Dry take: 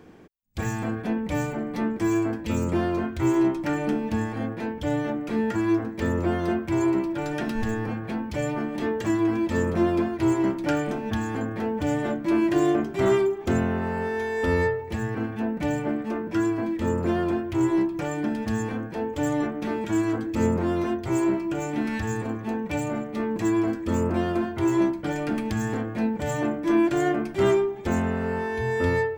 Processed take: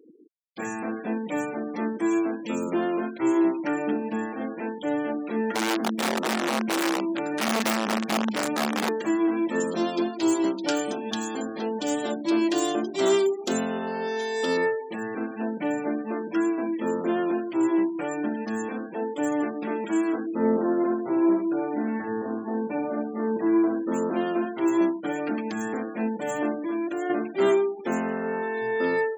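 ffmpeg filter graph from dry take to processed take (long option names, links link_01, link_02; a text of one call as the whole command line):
ffmpeg -i in.wav -filter_complex "[0:a]asettb=1/sr,asplit=3[link_01][link_02][link_03];[link_01]atrim=end=5.544[link_04];[link_02]atrim=start=5.54:end=8.89,asetpts=PTS-STARTPTS,afade=type=in:duration=0.004:curve=qsin,afade=type=out:start_time=3.346:duration=0.004:curve=qsin,equalizer=frequency=220:width_type=o:width=0.29:gain=14,acompressor=threshold=-20dB:ratio=12:attack=3.2:release=140:knee=1:detection=peak,aeval=exprs='(mod(8.91*val(0)+1,2)-1)/8.91':channel_layout=same[link_05];[link_03]atrim=start=8.886[link_06];[link_04][link_05]acrossfade=duration=0.004:curve1=hsin:curve2=qsin[link_07];[link_07][link_06]acrossfade=duration=0.004:curve1=qsin:curve2=hsin,asettb=1/sr,asplit=3[link_08][link_09][link_10];[link_08]atrim=end=9.604[link_11];[link_09]atrim=start=9.6:end=14.57,asetpts=PTS-STARTPTS,afade=type=in:duration=0.004:curve=qsin,afade=type=out:start_time=4.966:duration=0.004:curve=qsin,highshelf=frequency=2800:width_type=q:width=1.5:gain=9,bandreject=frequency=50:width_type=h:width=6,bandreject=frequency=100:width_type=h:width=6,bandreject=frequency=150:width_type=h:width=6,bandreject=frequency=200:width_type=h:width=6,bandreject=frequency=250:width_type=h:width=6,bandreject=frequency=300:width_type=h:width=6,bandreject=frequency=350:width_type=h:width=6,aecho=1:1:107:0.0708,atrim=end_sample=219177[link_12];[link_10]atrim=start=14.566[link_13];[link_11][link_12]acrossfade=duration=0.004:curve1=hsin:curve2=qsin[link_14];[link_14][link_13]acrossfade=duration=0.004:curve1=qsin:curve2=hsin,asettb=1/sr,asplit=3[link_15][link_16][link_17];[link_15]atrim=end=20.264[link_18];[link_16]atrim=start=20.26:end=23.92,asetpts=PTS-STARTPTS,afade=type=in:duration=0.004:curve=qsin,afade=type=out:start_time=3.656:duration=0.004:curve=qsin,lowpass=1600,aecho=1:1:72:0.501,atrim=end_sample=161406[link_19];[link_17]atrim=start=23.916[link_20];[link_18][link_19]acrossfade=duration=0.004:curve1=hsin:curve2=qsin[link_21];[link_21][link_20]acrossfade=duration=0.004:curve1=qsin:curve2=hsin,asettb=1/sr,asplit=3[link_22][link_23][link_24];[link_22]atrim=end=26.584[link_25];[link_23]atrim=start=26.58:end=27.1,asetpts=PTS-STARTPTS,afade=type=in:duration=0.004:curve=qsin,afade=type=out:start_time=0.516:duration=0.004:curve=qsin,bandreject=frequency=50:width_type=h:width=6,bandreject=frequency=100:width_type=h:width=6,bandreject=frequency=150:width_type=h:width=6,bandreject=frequency=200:width_type=h:width=6,bandreject=frequency=250:width_type=h:width=6,acompressor=threshold=-27dB:ratio=3:attack=3.2:release=140:knee=1:detection=peak[link_26];[link_24]atrim=start=27.096[link_27];[link_25][link_26]acrossfade=duration=0.004:curve1=hsin:curve2=qsin[link_28];[link_28][link_27]acrossfade=duration=0.004:curve1=qsin:curve2=hsin,highpass=frequency=220:width=0.5412,highpass=frequency=220:width=1.3066,afftfilt=real='re*gte(hypot(re,im),0.0141)':imag='im*gte(hypot(re,im),0.0141)':win_size=1024:overlap=0.75" out.wav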